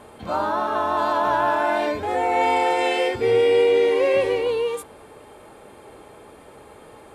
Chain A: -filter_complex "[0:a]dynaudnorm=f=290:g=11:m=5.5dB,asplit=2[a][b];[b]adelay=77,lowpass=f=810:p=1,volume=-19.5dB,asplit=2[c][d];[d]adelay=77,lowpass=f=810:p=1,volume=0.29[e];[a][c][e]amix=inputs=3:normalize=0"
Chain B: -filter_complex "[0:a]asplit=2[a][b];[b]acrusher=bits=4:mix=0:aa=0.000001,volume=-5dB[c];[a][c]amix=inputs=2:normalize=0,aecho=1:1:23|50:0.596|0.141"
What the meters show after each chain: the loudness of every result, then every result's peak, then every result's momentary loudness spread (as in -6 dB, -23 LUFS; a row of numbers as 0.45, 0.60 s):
-16.5, -15.0 LUFS; -3.5, -2.0 dBFS; 10, 9 LU